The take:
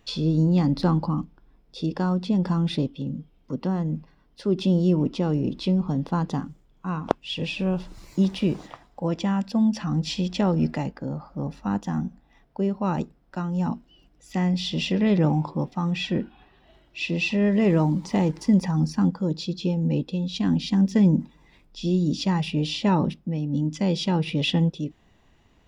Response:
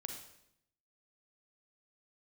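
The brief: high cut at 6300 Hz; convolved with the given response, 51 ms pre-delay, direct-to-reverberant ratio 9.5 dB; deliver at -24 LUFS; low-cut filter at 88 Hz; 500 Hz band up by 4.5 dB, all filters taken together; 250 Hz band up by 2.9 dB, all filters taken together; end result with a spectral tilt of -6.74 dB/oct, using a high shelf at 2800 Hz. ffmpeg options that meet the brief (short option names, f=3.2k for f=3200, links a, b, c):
-filter_complex "[0:a]highpass=88,lowpass=6.3k,equalizer=f=250:t=o:g=3.5,equalizer=f=500:t=o:g=4.5,highshelf=f=2.8k:g=3,asplit=2[a][b];[1:a]atrim=start_sample=2205,adelay=51[c];[b][c]afir=irnorm=-1:irlink=0,volume=-7.5dB[d];[a][d]amix=inputs=2:normalize=0,volume=-2.5dB"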